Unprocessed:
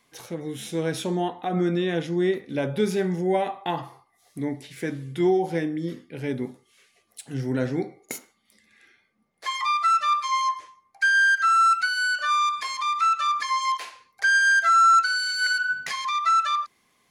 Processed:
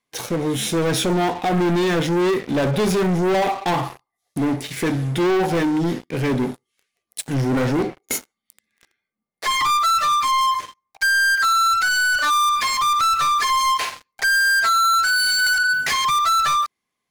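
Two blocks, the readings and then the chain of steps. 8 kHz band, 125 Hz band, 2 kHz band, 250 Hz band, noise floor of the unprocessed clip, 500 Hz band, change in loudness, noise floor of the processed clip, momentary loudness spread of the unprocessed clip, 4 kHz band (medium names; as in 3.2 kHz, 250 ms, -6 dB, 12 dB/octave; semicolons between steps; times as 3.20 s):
+10.0 dB, +7.5 dB, +3.5 dB, +6.0 dB, -67 dBFS, +5.0 dB, +4.0 dB, -81 dBFS, 16 LU, +8.0 dB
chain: waveshaping leveller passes 5; trim -4.5 dB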